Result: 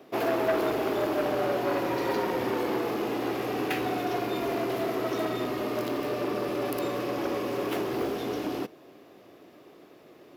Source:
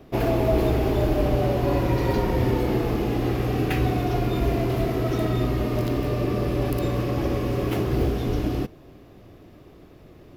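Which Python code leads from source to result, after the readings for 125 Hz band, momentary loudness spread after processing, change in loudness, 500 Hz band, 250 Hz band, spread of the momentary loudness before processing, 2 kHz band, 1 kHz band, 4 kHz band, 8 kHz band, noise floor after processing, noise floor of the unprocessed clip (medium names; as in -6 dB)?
-18.5 dB, 4 LU, -5.5 dB, -3.0 dB, -6.0 dB, 3 LU, 0.0 dB, -1.0 dB, -1.5 dB, -1.5 dB, -53 dBFS, -49 dBFS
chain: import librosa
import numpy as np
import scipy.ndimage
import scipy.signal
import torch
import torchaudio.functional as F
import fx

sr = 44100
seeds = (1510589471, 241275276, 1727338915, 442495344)

y = scipy.signal.sosfilt(scipy.signal.butter(2, 320.0, 'highpass', fs=sr, output='sos'), x)
y = fx.transformer_sat(y, sr, knee_hz=1100.0)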